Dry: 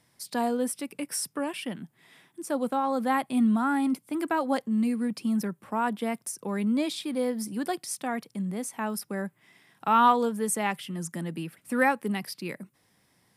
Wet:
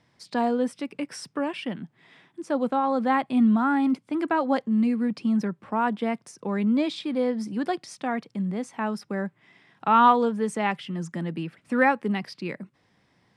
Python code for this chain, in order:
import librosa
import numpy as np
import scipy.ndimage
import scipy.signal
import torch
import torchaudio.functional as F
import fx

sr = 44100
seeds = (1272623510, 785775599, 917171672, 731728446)

y = fx.air_absorb(x, sr, metres=130.0)
y = F.gain(torch.from_numpy(y), 3.5).numpy()